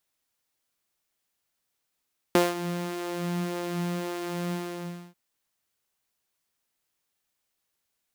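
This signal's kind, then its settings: synth patch with filter wobble F4, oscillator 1 saw, oscillator 2 square, interval -12 st, sub -3 dB, noise -15.5 dB, filter highpass, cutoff 160 Hz, Q 1.6, filter envelope 1 oct, filter sustain 50%, attack 1.9 ms, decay 0.19 s, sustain -14 dB, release 0.63 s, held 2.16 s, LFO 1.8 Hz, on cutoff 0.7 oct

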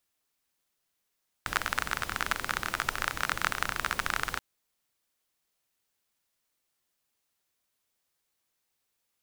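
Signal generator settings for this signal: rain from filtered ticks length 2.93 s, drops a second 28, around 1400 Hz, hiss -8 dB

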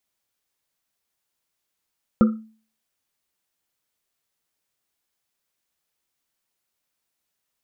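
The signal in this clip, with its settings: Risset drum, pitch 220 Hz, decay 0.42 s, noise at 1300 Hz, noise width 150 Hz, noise 15%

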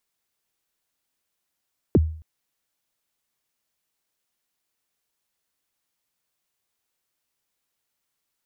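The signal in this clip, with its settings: kick drum length 0.27 s, from 470 Hz, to 79 Hz, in 33 ms, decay 0.49 s, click off, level -10 dB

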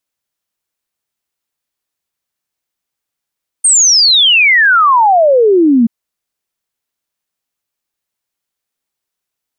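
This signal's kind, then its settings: log sweep 8900 Hz -> 220 Hz 2.23 s -5 dBFS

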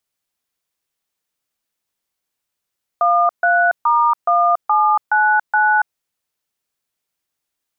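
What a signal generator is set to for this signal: DTMF "13*1799", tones 0.282 s, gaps 0.139 s, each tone -14 dBFS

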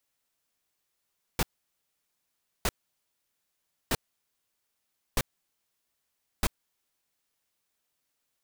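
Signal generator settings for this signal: noise bursts pink, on 0.04 s, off 1.22 s, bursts 5, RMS -25 dBFS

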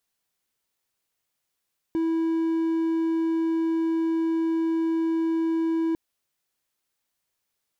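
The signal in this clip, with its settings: tone triangle 327 Hz -19.5 dBFS 4.00 s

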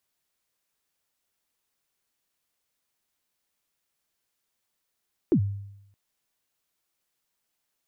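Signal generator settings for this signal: kick drum length 0.62 s, from 400 Hz, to 100 Hz, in 80 ms, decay 0.83 s, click off, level -15 dB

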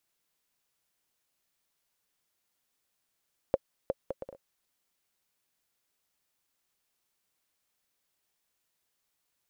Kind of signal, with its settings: bouncing ball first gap 0.36 s, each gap 0.57, 540 Hz, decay 36 ms -12 dBFS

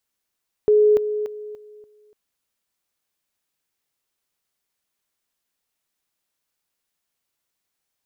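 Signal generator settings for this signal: level ladder 422 Hz -11.5 dBFS, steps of -10 dB, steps 5, 0.29 s 0.00 s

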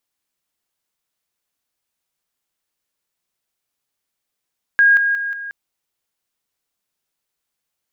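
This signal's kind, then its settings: level ladder 1630 Hz -8.5 dBFS, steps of -6 dB, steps 4, 0.18 s 0.00 s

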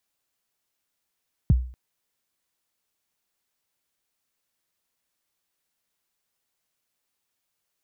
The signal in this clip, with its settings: kick drum length 0.24 s, from 190 Hz, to 62 Hz, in 25 ms, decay 0.44 s, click off, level -11 dB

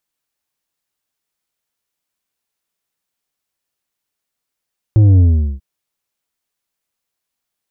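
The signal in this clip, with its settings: sub drop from 110 Hz, over 0.64 s, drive 7 dB, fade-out 0.41 s, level -6.5 dB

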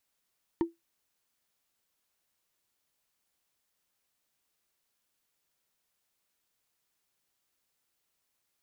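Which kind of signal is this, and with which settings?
wood hit, lowest mode 335 Hz, decay 0.17 s, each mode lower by 9 dB, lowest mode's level -20 dB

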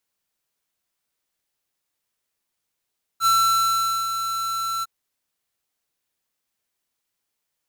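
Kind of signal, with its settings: ADSR square 1340 Hz, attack 61 ms, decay 0.811 s, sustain -9 dB, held 1.63 s, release 27 ms -17 dBFS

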